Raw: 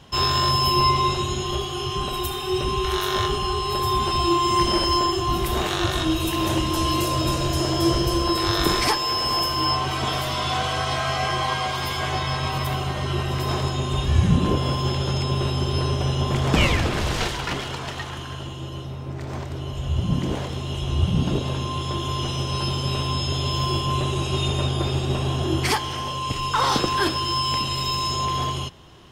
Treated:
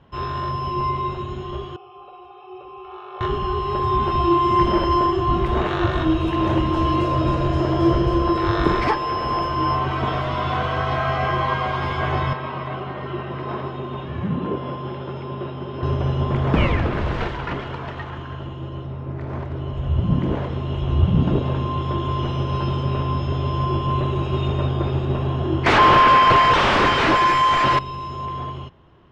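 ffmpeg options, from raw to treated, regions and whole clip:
ffmpeg -i in.wav -filter_complex "[0:a]asettb=1/sr,asplit=3[link_01][link_02][link_03];[link_01]atrim=end=1.764[link_04];[link_02]atrim=start=1.76:end=3.21,asetpts=PTS-STARTPTS,afade=type=in:duration=0.004:curve=qsin,afade=type=out:start_time=1.446:duration=0.004:curve=qsin,asplit=3[link_05][link_06][link_07];[link_05]bandpass=frequency=730:width_type=q:width=8,volume=0dB[link_08];[link_06]bandpass=frequency=1090:width_type=q:width=8,volume=-6dB[link_09];[link_07]bandpass=frequency=2440:width_type=q:width=8,volume=-9dB[link_10];[link_08][link_09][link_10]amix=inputs=3:normalize=0,aecho=1:1:2.3:0.9,atrim=end_sample=63945[link_11];[link_03]atrim=start=3.206[link_12];[link_04][link_11]acrossfade=duration=0.004:curve1=hsin:curve2=qsin[link_13];[link_13][link_12]acrossfade=duration=0.004:curve1=qsin:curve2=hsin,asettb=1/sr,asplit=3[link_14][link_15][link_16];[link_14]atrim=end=12.334[link_17];[link_15]atrim=start=12.33:end=15.83,asetpts=PTS-STARTPTS,afade=type=in:duration=0.004:curve=qsin,afade=type=out:start_time=3.496:duration=0.004:curve=qsin,flanger=delay=2.1:depth=4.4:regen=77:speed=1.4:shape=sinusoidal,highpass=160,lowpass=4300[link_18];[link_16]atrim=start=15.826[link_19];[link_17][link_18]acrossfade=duration=0.004:curve1=hsin:curve2=qsin[link_20];[link_20][link_19]acrossfade=duration=0.004:curve1=qsin:curve2=hsin,asettb=1/sr,asplit=3[link_21][link_22][link_23];[link_21]atrim=end=22.844[link_24];[link_22]atrim=start=22.84:end=23.82,asetpts=PTS-STARTPTS,afade=type=in:duration=0.004:curve=qsin,afade=type=out:start_time=0.976:duration=0.004:curve=qsin,lowpass=8300,equalizer=frequency=3800:width=1.6:gain=-3[link_25];[link_23]atrim=start=23.816[link_26];[link_24][link_25]acrossfade=duration=0.004:curve1=hsin:curve2=qsin[link_27];[link_27][link_26]acrossfade=duration=0.004:curve1=qsin:curve2=hsin,asettb=1/sr,asplit=3[link_28][link_29][link_30];[link_28]atrim=end=25.664[link_31];[link_29]atrim=start=25.66:end=27.79,asetpts=PTS-STARTPTS,afade=type=in:duration=0.004:curve=qsin,afade=type=out:start_time=2.126:duration=0.004:curve=qsin,asplit=2[link_32][link_33];[link_33]highpass=frequency=720:poles=1,volume=20dB,asoftclip=type=tanh:threshold=-7.5dB[link_34];[link_32][link_34]amix=inputs=2:normalize=0,lowpass=frequency=1400:poles=1,volume=-6dB,aeval=exprs='0.376*sin(PI/2*4.47*val(0)/0.376)':channel_layout=same[link_35];[link_30]atrim=start=27.786[link_36];[link_31][link_35]acrossfade=duration=0.004:curve1=hsin:curve2=qsin[link_37];[link_37][link_36]acrossfade=duration=0.004:curve1=qsin:curve2=hsin,lowpass=1800,bandreject=frequency=770:width=17,dynaudnorm=framelen=380:gausssize=17:maxgain=11.5dB,volume=-3.5dB" out.wav

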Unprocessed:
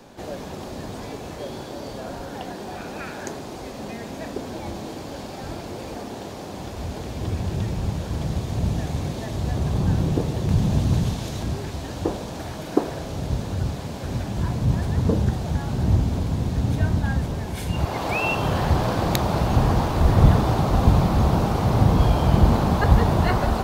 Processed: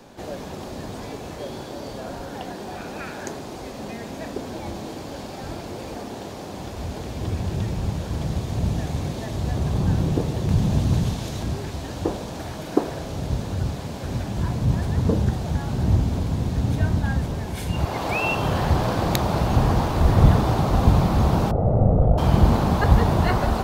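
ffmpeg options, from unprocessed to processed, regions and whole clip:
ffmpeg -i in.wav -filter_complex "[0:a]asettb=1/sr,asplit=3[link_01][link_02][link_03];[link_01]atrim=end=21.514[link_04];[link_02]atrim=start=21.51:end=22.18,asetpts=PTS-STARTPTS,afade=type=in:duration=0.004:curve=qsin,afade=type=out:start_time=0.666:duration=0.004:curve=qsin,aeval=exprs='clip(val(0),-1,0.0944)':channel_layout=same,lowpass=frequency=540:width_type=q:width=1.7,aecho=1:1:1.5:0.47,atrim=end_sample=29547[link_05];[link_03]atrim=start=22.176[link_06];[link_04][link_05]acrossfade=duration=0.004:curve1=hsin:curve2=qsin[link_07];[link_07][link_06]acrossfade=duration=0.004:curve1=qsin:curve2=hsin" out.wav

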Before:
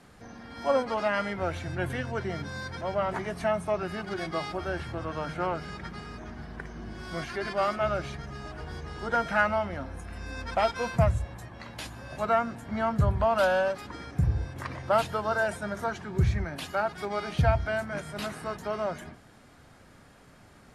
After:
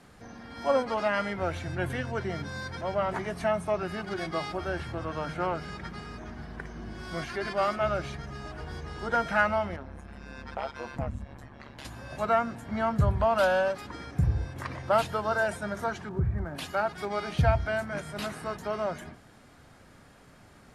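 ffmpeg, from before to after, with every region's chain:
ffmpeg -i in.wav -filter_complex "[0:a]asettb=1/sr,asplit=3[link_01][link_02][link_03];[link_01]atrim=end=9.764[link_04];[link_02]atrim=start=9.76:end=11.85,asetpts=PTS-STARTPTS,afade=type=in:duration=0.004:curve=qsin,afade=type=out:start_time=2.086:duration=0.004:curve=qsin,tremolo=f=140:d=0.889,acompressor=threshold=-38dB:ratio=1.5:attack=3.2:release=140:knee=1:detection=peak,highshelf=frequency=5800:gain=-10[link_05];[link_03]atrim=start=11.846[link_06];[link_04][link_05]acrossfade=duration=0.004:curve1=hsin:curve2=qsin[link_07];[link_07][link_06]acrossfade=duration=0.004:curve1=qsin:curve2=hsin,asettb=1/sr,asplit=3[link_08][link_09][link_10];[link_08]atrim=end=16.094[link_11];[link_09]atrim=start=16.09:end=16.55,asetpts=PTS-STARTPTS,afade=type=in:duration=0.004:curve=qsin,afade=type=out:start_time=0.456:duration=0.004:curve=qsin,lowpass=frequency=1500:width=0.5412,lowpass=frequency=1500:width=1.3066,acompressor=threshold=-28dB:ratio=1.5:attack=3.2:release=140:knee=1:detection=peak,aeval=exprs='sgn(val(0))*max(abs(val(0))-0.00106,0)':channel_layout=same[link_12];[link_10]atrim=start=16.546[link_13];[link_11][link_12]acrossfade=duration=0.004:curve1=hsin:curve2=qsin[link_14];[link_14][link_13]acrossfade=duration=0.004:curve1=qsin:curve2=hsin" out.wav

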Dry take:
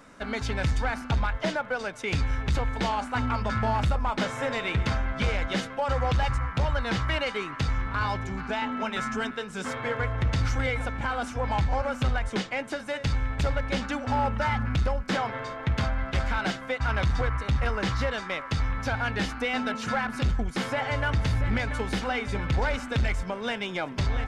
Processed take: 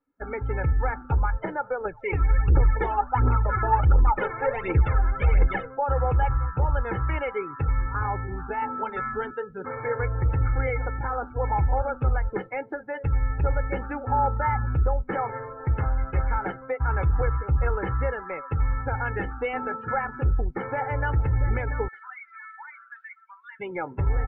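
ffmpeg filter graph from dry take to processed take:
ffmpeg -i in.wav -filter_complex "[0:a]asettb=1/sr,asplit=3[link_01][link_02][link_03];[link_01]atrim=end=1.854[link_04];[link_02]atrim=start=1.85:end=5.66,asetpts=PTS-STARTPTS,afade=type=in:duration=0.004:curve=qsin,afade=type=out:start_time=3.806:duration=0.004:curve=qsin,aphaser=in_gain=1:out_gain=1:delay=3.1:decay=0.65:speed=1.4:type=triangular,asoftclip=type=hard:threshold=-17dB[link_05];[link_03]atrim=start=5.656[link_06];[link_04][link_05]acrossfade=duration=0.004:curve1=hsin:curve2=qsin[link_07];[link_07][link_06]acrossfade=duration=0.004:curve1=qsin:curve2=hsin,asettb=1/sr,asplit=3[link_08][link_09][link_10];[link_08]atrim=end=21.884[link_11];[link_09]atrim=start=21.88:end=23.6,asetpts=PTS-STARTPTS,afade=type=in:duration=0.004:curve=qsin,afade=type=out:start_time=1.716:duration=0.004:curve=qsin,highpass=frequency=1200:width=0.5412,highpass=frequency=1200:width=1.3066,asoftclip=type=hard:threshold=-35dB[link_12];[link_10]atrim=start=23.596[link_13];[link_11][link_12]acrossfade=duration=0.004:curve1=hsin:curve2=qsin[link_14];[link_14][link_13]acrossfade=duration=0.004:curve1=qsin:curve2=hsin,lowpass=1800,afftdn=noise_reduction=33:noise_floor=-36,aecho=1:1:2.3:0.67" out.wav

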